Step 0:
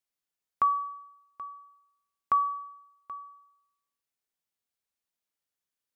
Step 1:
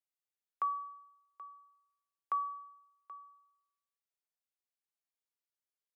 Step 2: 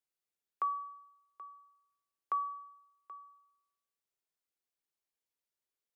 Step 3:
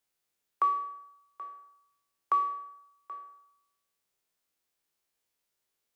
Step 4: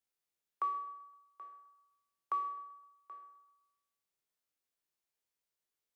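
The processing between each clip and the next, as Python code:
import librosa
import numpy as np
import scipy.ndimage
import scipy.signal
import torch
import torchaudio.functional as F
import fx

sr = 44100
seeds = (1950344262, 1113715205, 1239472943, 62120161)

y1 = scipy.signal.sosfilt(scipy.signal.ellip(4, 1.0, 40, 350.0, 'highpass', fs=sr, output='sos'), x)
y1 = y1 * 10.0 ** (-9.0 / 20.0)
y2 = fx.peak_eq(y1, sr, hz=390.0, db=5.0, octaves=0.77)
y3 = fx.spec_trails(y2, sr, decay_s=0.69)
y3 = y3 * 10.0 ** (7.0 / 20.0)
y4 = fx.echo_feedback(y3, sr, ms=129, feedback_pct=47, wet_db=-20)
y4 = y4 * 10.0 ** (-8.5 / 20.0)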